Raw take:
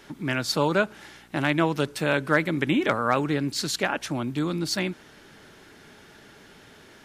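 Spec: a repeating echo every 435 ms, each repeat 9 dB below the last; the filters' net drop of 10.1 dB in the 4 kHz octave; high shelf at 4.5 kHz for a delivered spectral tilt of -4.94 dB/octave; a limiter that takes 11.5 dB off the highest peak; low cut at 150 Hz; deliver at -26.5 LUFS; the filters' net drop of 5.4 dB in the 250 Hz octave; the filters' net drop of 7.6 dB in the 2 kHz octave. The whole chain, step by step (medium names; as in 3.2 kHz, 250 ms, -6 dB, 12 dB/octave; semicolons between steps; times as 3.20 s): high-pass 150 Hz; peaking EQ 250 Hz -6.5 dB; peaking EQ 2 kHz -8 dB; peaking EQ 4 kHz -7 dB; treble shelf 4.5 kHz -6 dB; peak limiter -24 dBFS; feedback delay 435 ms, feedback 35%, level -9 dB; trim +8.5 dB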